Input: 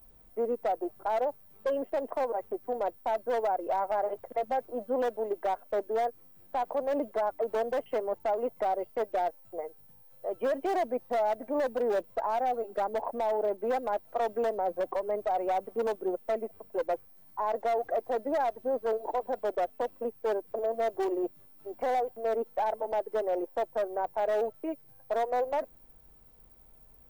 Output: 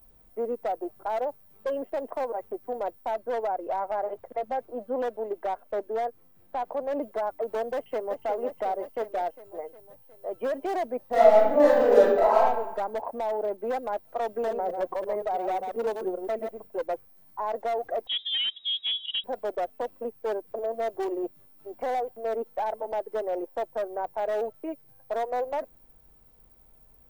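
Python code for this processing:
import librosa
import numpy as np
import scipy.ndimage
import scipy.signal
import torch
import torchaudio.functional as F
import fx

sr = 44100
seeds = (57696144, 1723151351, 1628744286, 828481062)

y = fx.high_shelf(x, sr, hz=4800.0, db=-5.5, at=(3.14, 7.01))
y = fx.echo_throw(y, sr, start_s=7.74, length_s=0.45, ms=360, feedback_pct=65, wet_db=-7.0)
y = fx.reverb_throw(y, sr, start_s=11.08, length_s=1.28, rt60_s=1.0, drr_db=-9.5)
y = fx.reverse_delay(y, sr, ms=112, wet_db=-5.5, at=(14.26, 16.67))
y = fx.freq_invert(y, sr, carrier_hz=3800, at=(18.07, 19.24))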